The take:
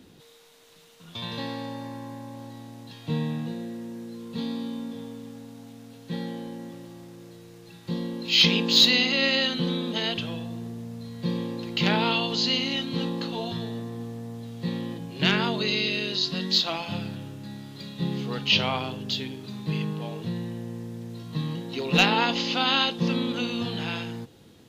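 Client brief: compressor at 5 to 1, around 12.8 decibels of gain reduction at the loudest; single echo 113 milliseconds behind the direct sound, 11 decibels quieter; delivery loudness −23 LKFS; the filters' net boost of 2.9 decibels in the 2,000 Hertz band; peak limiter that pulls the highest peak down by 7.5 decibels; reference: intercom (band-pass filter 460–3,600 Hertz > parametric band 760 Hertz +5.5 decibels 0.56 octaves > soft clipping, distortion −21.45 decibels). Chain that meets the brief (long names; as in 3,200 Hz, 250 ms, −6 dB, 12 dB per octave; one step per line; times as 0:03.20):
parametric band 2,000 Hz +5 dB
downward compressor 5 to 1, threshold −27 dBFS
brickwall limiter −21 dBFS
band-pass filter 460–3,600 Hz
parametric band 760 Hz +5.5 dB 0.56 octaves
single-tap delay 113 ms −11 dB
soft clipping −24 dBFS
level +13.5 dB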